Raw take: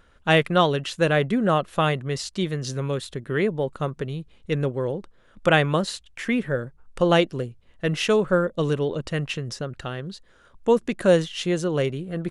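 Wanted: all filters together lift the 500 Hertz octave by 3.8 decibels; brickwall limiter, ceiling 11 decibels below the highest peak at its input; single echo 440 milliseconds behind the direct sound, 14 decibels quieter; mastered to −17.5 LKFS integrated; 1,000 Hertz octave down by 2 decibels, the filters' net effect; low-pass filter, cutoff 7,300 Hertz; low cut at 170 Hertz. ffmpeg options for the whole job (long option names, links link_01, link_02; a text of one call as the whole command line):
ffmpeg -i in.wav -af "highpass=170,lowpass=7300,equalizer=frequency=500:width_type=o:gain=5.5,equalizer=frequency=1000:width_type=o:gain=-5,alimiter=limit=-12.5dB:level=0:latency=1,aecho=1:1:440:0.2,volume=7.5dB" out.wav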